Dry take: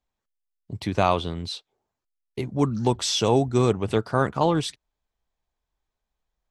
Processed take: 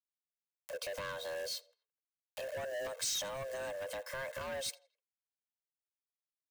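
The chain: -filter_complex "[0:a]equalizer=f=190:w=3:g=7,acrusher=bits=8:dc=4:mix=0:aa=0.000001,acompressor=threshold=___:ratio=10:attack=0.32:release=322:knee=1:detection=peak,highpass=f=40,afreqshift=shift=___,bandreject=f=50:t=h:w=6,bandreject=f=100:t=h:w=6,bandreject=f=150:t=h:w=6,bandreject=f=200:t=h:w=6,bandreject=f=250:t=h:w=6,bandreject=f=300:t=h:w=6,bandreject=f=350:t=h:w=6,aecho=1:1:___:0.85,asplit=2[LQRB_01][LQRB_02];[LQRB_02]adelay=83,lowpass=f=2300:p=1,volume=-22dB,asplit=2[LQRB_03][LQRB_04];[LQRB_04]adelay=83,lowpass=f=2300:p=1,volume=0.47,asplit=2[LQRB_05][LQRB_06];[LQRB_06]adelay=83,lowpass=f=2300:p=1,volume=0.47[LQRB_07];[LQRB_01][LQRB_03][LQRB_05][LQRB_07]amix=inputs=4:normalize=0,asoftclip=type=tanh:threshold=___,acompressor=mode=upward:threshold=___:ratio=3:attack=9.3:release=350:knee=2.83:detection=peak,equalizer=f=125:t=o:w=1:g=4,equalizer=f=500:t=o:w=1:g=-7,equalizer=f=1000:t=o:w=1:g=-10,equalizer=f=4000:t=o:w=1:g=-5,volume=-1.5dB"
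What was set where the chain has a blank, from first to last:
-21dB, 400, 1.9, -26.5dB, -42dB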